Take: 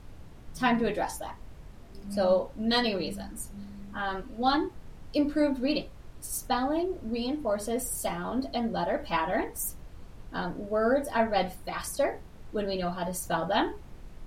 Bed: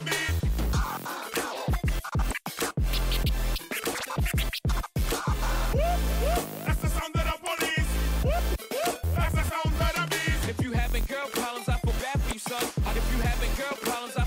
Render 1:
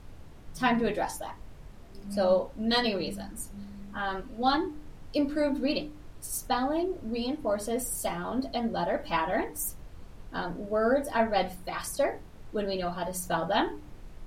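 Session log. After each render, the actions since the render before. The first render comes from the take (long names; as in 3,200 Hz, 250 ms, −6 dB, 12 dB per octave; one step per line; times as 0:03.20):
hum removal 60 Hz, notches 5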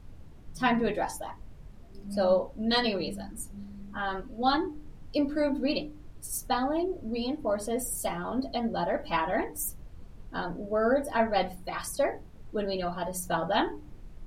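broadband denoise 6 dB, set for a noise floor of −48 dBFS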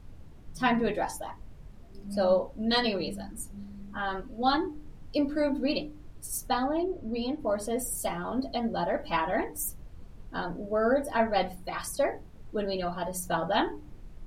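0:06.66–0:07.41: high-shelf EQ 7,800 Hz −10 dB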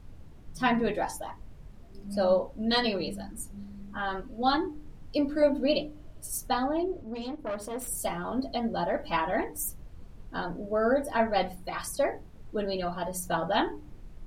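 0:05.42–0:06.31: hollow resonant body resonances 620/3,000 Hz, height 11 dB
0:07.02–0:07.88: tube saturation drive 28 dB, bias 0.75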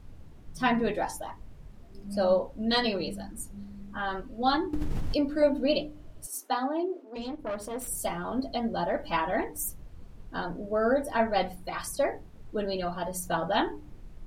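0:04.73–0:05.17: envelope flattener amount 100%
0:06.26–0:07.16: Chebyshev high-pass with heavy ripple 250 Hz, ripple 3 dB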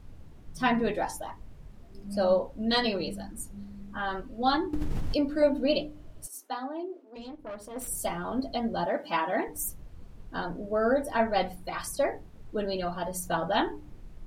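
0:06.28–0:07.76: clip gain −6 dB
0:08.86–0:09.48: high-pass filter 180 Hz 24 dB per octave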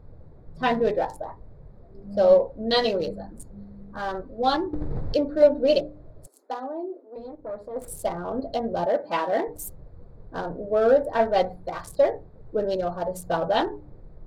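adaptive Wiener filter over 15 samples
octave-band graphic EQ 125/250/500/4,000/8,000 Hz +5/−4/+10/+5/−3 dB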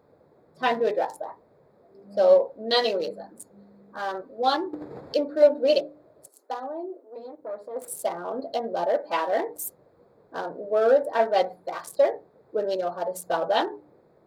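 high-pass filter 330 Hz 12 dB per octave
high-shelf EQ 8,200 Hz +5 dB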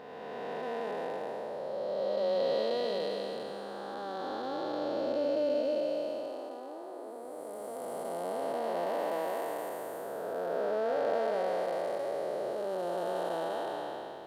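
spectrum smeared in time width 1,030 ms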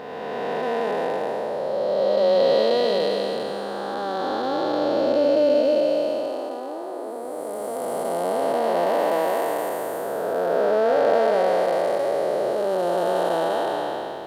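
level +11.5 dB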